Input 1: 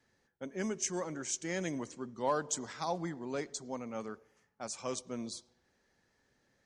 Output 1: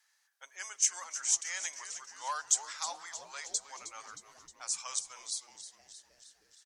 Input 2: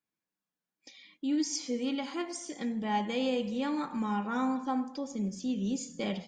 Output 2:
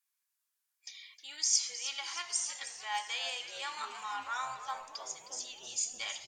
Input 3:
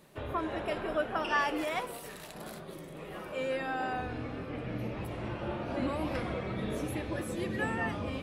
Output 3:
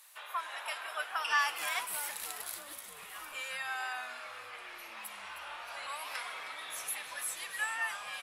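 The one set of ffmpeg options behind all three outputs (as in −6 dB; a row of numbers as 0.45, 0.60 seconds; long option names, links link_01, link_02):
-filter_complex "[0:a]highpass=frequency=950:width=0.5412,highpass=frequency=950:width=1.3066,equalizer=frequency=12000:width=0.35:gain=12.5,asplit=8[link_01][link_02][link_03][link_04][link_05][link_06][link_07][link_08];[link_02]adelay=312,afreqshift=-140,volume=-12.5dB[link_09];[link_03]adelay=624,afreqshift=-280,volume=-16.9dB[link_10];[link_04]adelay=936,afreqshift=-420,volume=-21.4dB[link_11];[link_05]adelay=1248,afreqshift=-560,volume=-25.8dB[link_12];[link_06]adelay=1560,afreqshift=-700,volume=-30.2dB[link_13];[link_07]adelay=1872,afreqshift=-840,volume=-34.7dB[link_14];[link_08]adelay=2184,afreqshift=-980,volume=-39.1dB[link_15];[link_01][link_09][link_10][link_11][link_12][link_13][link_14][link_15]amix=inputs=8:normalize=0"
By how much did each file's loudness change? 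+4.0, −2.0, −2.0 LU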